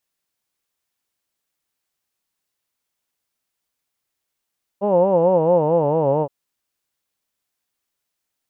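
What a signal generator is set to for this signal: formant vowel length 1.47 s, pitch 194 Hz, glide -5.5 st, vibrato 4.5 Hz, vibrato depth 1.4 st, F1 530 Hz, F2 910 Hz, F3 2800 Hz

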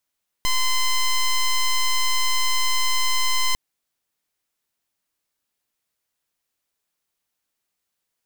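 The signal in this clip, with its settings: pulse 1030 Hz, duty 9% -19 dBFS 3.10 s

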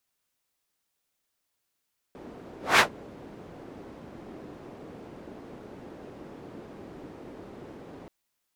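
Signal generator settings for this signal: whoosh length 5.93 s, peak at 0.64, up 0.20 s, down 0.12 s, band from 340 Hz, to 1700 Hz, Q 1.1, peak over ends 28 dB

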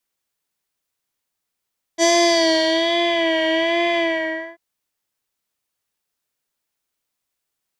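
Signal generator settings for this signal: synth patch with vibrato E5, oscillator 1 square, oscillator 2 square, interval -12 st, detune 20 cents, oscillator 2 level -2.5 dB, noise -10 dB, filter lowpass, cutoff 1600 Hz, Q 3.3, filter envelope 2 oct, filter decay 1.27 s, attack 46 ms, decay 0.79 s, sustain -5 dB, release 0.59 s, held 2.00 s, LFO 1.2 Hz, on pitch 59 cents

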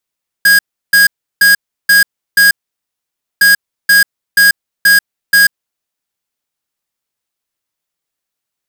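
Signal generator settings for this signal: beep pattern square 1640 Hz, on 0.14 s, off 0.34 s, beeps 5, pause 0.90 s, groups 2, -6.5 dBFS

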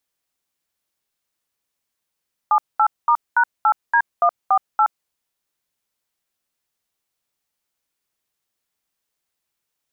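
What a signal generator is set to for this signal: DTMF "78*#8D148", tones 72 ms, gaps 0.213 s, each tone -14.5 dBFS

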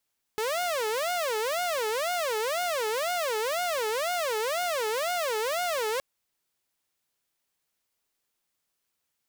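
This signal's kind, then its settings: siren wail 427–720 Hz 2/s saw -24 dBFS 5.62 s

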